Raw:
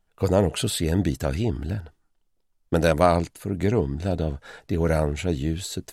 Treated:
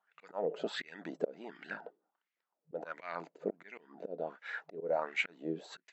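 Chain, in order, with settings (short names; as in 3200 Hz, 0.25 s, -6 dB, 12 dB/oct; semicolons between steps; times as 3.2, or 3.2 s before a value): FFT band-pass 160–7800 Hz; auto swell 0.491 s; wah 1.4 Hz 450–2200 Hz, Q 3.8; gain +8.5 dB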